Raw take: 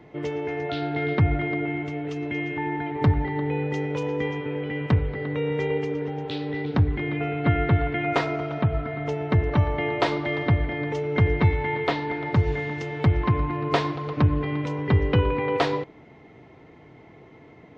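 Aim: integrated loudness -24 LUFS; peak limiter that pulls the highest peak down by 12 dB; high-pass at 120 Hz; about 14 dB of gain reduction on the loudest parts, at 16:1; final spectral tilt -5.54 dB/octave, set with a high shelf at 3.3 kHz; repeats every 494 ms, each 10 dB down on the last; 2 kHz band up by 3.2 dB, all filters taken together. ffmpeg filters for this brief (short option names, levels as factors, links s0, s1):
-af "highpass=120,equalizer=f=2000:t=o:g=4.5,highshelf=f=3300:g=-3.5,acompressor=threshold=0.0282:ratio=16,alimiter=level_in=1.88:limit=0.0631:level=0:latency=1,volume=0.531,aecho=1:1:494|988|1482|1976:0.316|0.101|0.0324|0.0104,volume=4.73"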